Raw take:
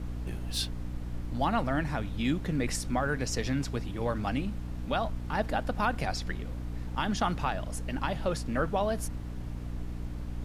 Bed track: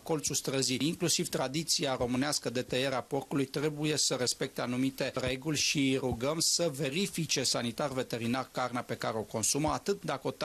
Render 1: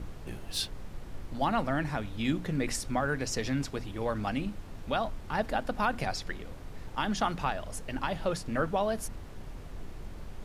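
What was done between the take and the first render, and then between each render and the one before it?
notches 60/120/180/240/300 Hz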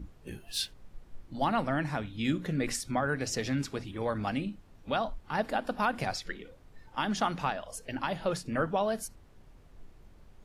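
noise print and reduce 13 dB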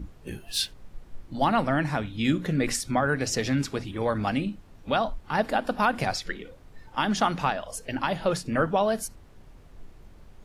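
gain +5.5 dB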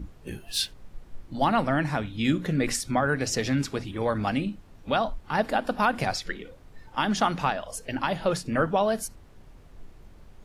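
nothing audible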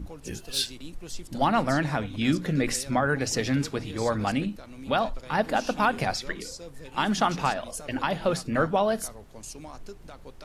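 add bed track -12.5 dB

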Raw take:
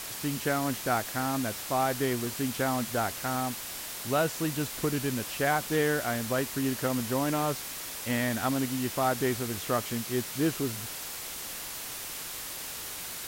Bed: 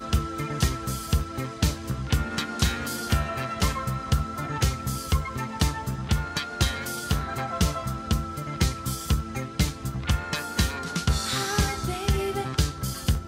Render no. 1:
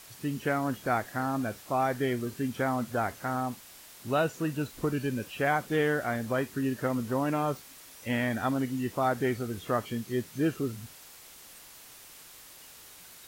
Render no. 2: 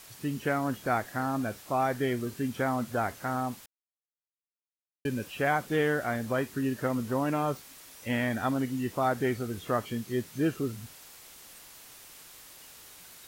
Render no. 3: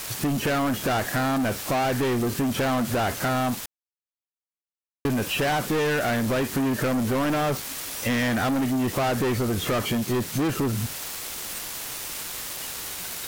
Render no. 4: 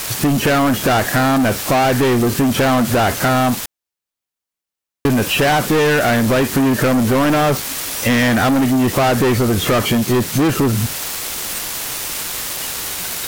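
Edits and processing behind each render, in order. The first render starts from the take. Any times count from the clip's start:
noise print and reduce 12 dB
3.66–5.05 mute
sample leveller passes 5; compressor 3:1, threshold -24 dBFS, peak gain reduction 5 dB
gain +9.5 dB

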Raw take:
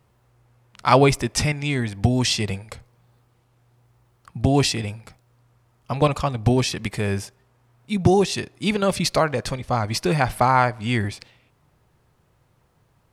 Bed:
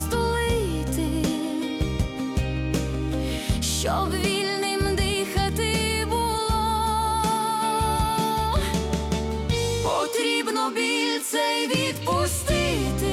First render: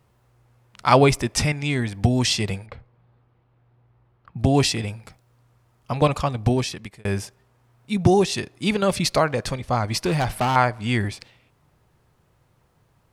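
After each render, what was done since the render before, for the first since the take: 2.66–4.39 air absorption 350 m; 6.16–7.05 fade out equal-power; 10.05–10.56 hard clip -17.5 dBFS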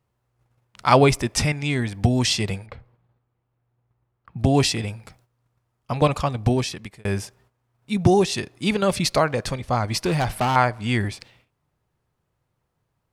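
gate -57 dBFS, range -12 dB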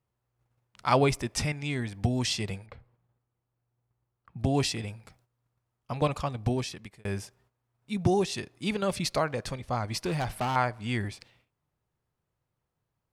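gain -8 dB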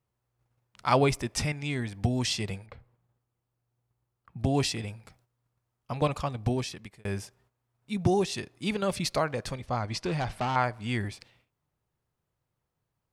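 9.66–10.64 LPF 7000 Hz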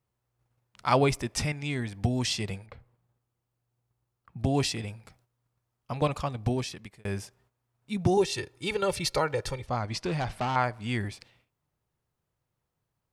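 8.17–9.67 comb 2.2 ms, depth 73%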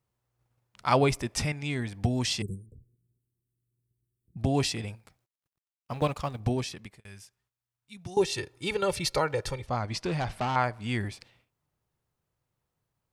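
2.42–4.37 Chebyshev band-stop 390–8200 Hz, order 4; 4.95–6.4 G.711 law mismatch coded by A; 7–8.17 passive tone stack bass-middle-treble 5-5-5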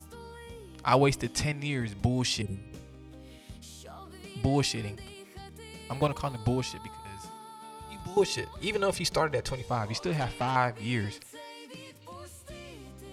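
add bed -22.5 dB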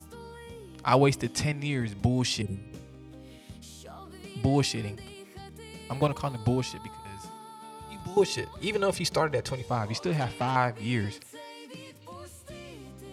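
HPF 81 Hz; low shelf 470 Hz +3 dB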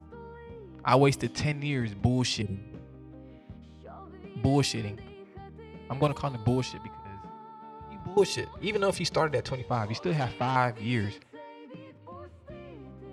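low-pass opened by the level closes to 1300 Hz, open at -21 dBFS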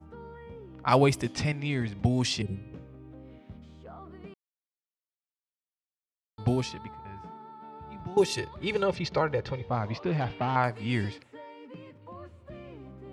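4.34–6.38 mute; 8.83–10.64 air absorption 160 m

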